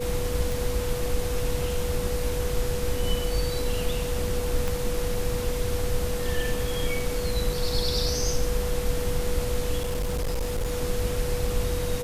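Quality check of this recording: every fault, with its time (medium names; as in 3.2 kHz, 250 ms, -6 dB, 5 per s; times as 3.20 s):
whine 490 Hz -30 dBFS
0.52 s: pop
4.68 s: pop
9.78–10.72 s: clipped -23.5 dBFS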